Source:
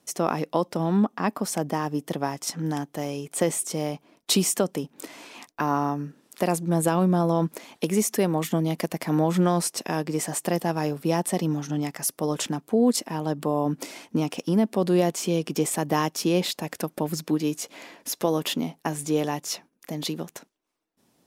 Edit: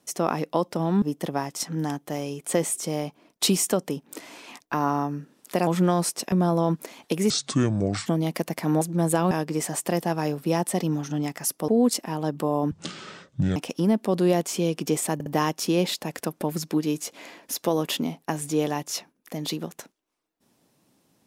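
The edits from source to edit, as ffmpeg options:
-filter_complex "[0:a]asplit=13[s0][s1][s2][s3][s4][s5][s6][s7][s8][s9][s10][s11][s12];[s0]atrim=end=1.022[s13];[s1]atrim=start=1.888:end=6.542[s14];[s2]atrim=start=9.248:end=9.902[s15];[s3]atrim=start=7.038:end=8.024[s16];[s4]atrim=start=8.02:end=8.5,asetpts=PTS-STARTPTS,asetrate=27783,aresample=44100[s17];[s5]atrim=start=8.496:end=9.252[s18];[s6]atrim=start=6.538:end=7.042[s19];[s7]atrim=start=9.898:end=12.272[s20];[s8]atrim=start=12.708:end=13.744[s21];[s9]atrim=start=13.74:end=14.25,asetpts=PTS-STARTPTS,asetrate=26460,aresample=44100[s22];[s10]atrim=start=14.246:end=15.892[s23];[s11]atrim=start=15.828:end=15.892[s24];[s12]atrim=start=15.828[s25];[s13][s14]acrossfade=d=0.004:c1=hsin:c2=hsin[s26];[s26][s15]acrossfade=d=0.004:c1=hsin:c2=hsin[s27];[s27][s16]acrossfade=d=0.004:c1=hsin:c2=hsin[s28];[s28][s17]acrossfade=d=0.004:c1=hsin:c2=hsin[s29];[s29][s18]acrossfade=d=0.004:c1=hsin:c2=hsin[s30];[s30][s19]acrossfade=d=0.004:c1=hsin:c2=hsin[s31];[s31][s20]acrossfade=d=0.004:c1=hsin:c2=hsin[s32];[s32][s21]acrossfade=d=0.004:c1=hsin:c2=hsin[s33];[s33][s22]acrossfade=d=0.004:c1=hsin:c2=hsin[s34];[s34][s23]acrossfade=d=0.004:c1=hsin:c2=hsin[s35];[s35][s24]acrossfade=d=0.004:c1=hsin:c2=hsin[s36];[s36][s25]acrossfade=d=0.004:c1=hsin:c2=hsin"

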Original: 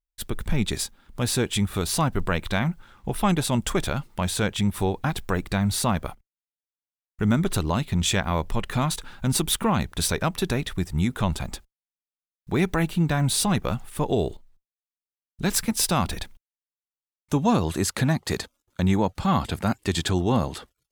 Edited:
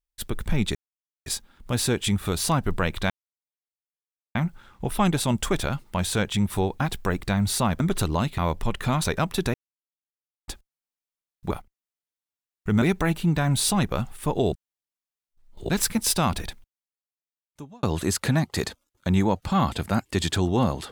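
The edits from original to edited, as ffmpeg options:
-filter_complex "[0:a]asplit=13[s0][s1][s2][s3][s4][s5][s6][s7][s8][s9][s10][s11][s12];[s0]atrim=end=0.75,asetpts=PTS-STARTPTS,afade=t=out:st=0.746:d=0.004:c=hsin,apad=pad_dur=0.51[s13];[s1]atrim=start=0.75:end=2.59,asetpts=PTS-STARTPTS,afade=t=in:d=0.004:c=hsin,afade=t=out:st=1.836:d=0.004:c=hsin,apad=pad_dur=1.25[s14];[s2]atrim=start=2.59:end=6.042,asetpts=PTS-STARTPTS,afade=t=in:d=0.004:c=hsin[s15];[s3]atrim=start=7.348:end=7.932[s16];[s4]atrim=start=8.268:end=8.932[s17];[s5]atrim=start=10.078:end=10.58,asetpts=PTS-STARTPTS,afade=t=out:st=0.498:d=0.004:c=hsin[s18];[s6]atrim=start=10.58:end=11.52,asetpts=PTS-STARTPTS,volume=0[s19];[s7]atrim=start=11.52:end=12.552,asetpts=PTS-STARTPTS,afade=t=in:d=0.004:c=hsin[s20];[s8]atrim=start=6.038:end=7.352[s21];[s9]atrim=start=12.548:end=14.252[s22];[s10]atrim=start=14.248:end=15.422,asetpts=PTS-STARTPTS,areverse[s23];[s11]atrim=start=15.418:end=17.56,asetpts=PTS-STARTPTS,afade=t=out:st=0.562:d=1.58[s24];[s12]atrim=start=17.56,asetpts=PTS-STARTPTS,afade=t=in:d=0.004:c=hsin[s25];[s13][s14][s15]concat=n=3:v=0:a=1[s26];[s26][s16]acrossfade=d=0.004:c1=hsin:c2=hsin[s27];[s27][s17]acrossfade=d=0.004:c1=hsin:c2=hsin[s28];[s18][s19][s20]concat=n=3:v=0:a=1[s29];[s28][s29]acrossfade=d=0.004:c1=hsin:c2=hsin[s30];[s30][s21]acrossfade=d=0.004:c1=hsin:c2=hsin[s31];[s31][s22]acrossfade=d=0.004:c1=hsin:c2=hsin[s32];[s32][s23]acrossfade=d=0.004:c1=hsin:c2=hsin[s33];[s24][s25]concat=n=2:v=0:a=1[s34];[s33][s34]acrossfade=d=0.004:c1=hsin:c2=hsin"

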